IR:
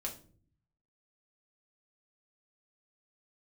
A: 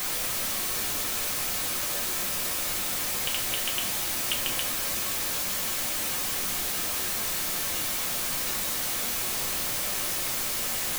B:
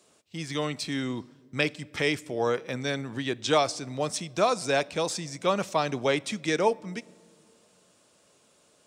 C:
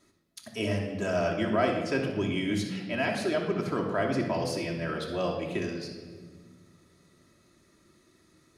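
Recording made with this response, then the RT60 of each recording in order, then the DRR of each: A; not exponential, not exponential, 1.7 s; -1.0, 21.5, -0.5 dB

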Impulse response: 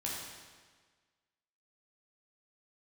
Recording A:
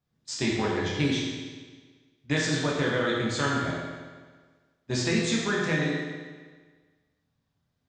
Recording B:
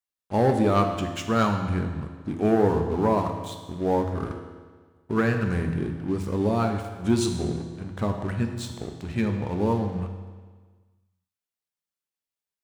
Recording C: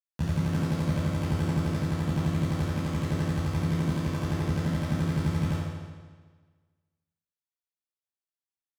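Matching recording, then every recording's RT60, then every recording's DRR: A; 1.5, 1.5, 1.5 s; -5.0, 4.0, -13.0 dB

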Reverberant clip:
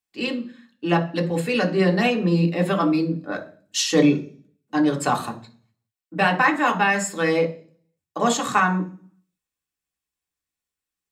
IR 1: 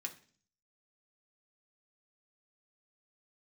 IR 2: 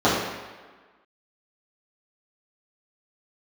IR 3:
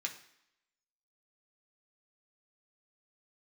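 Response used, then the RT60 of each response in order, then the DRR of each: 1; 0.45, 1.4, 0.75 s; 1.5, -11.0, 0.5 dB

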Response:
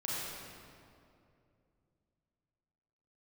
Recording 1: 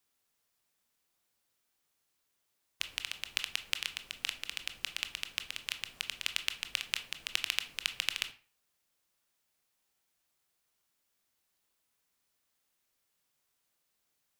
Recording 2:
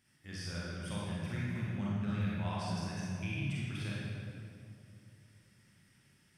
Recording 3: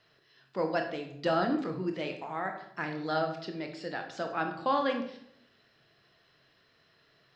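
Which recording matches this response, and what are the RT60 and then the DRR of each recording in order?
2; 0.40, 2.6, 0.70 s; 9.0, -7.5, 4.0 dB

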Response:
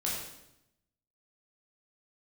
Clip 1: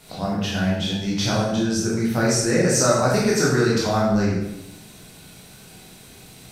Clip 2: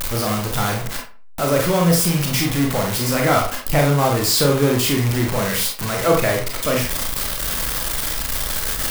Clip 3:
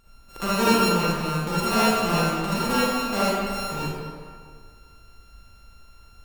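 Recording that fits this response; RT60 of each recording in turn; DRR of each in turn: 1; 0.85, 0.40, 1.9 s; -5.5, 0.0, -10.0 dB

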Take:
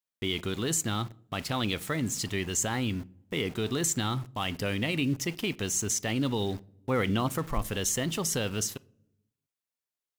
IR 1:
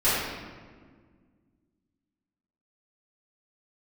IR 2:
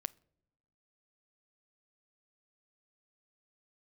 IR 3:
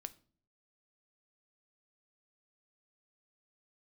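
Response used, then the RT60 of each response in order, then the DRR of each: 2; 1.7 s, not exponential, not exponential; -14.5, 17.5, 12.0 dB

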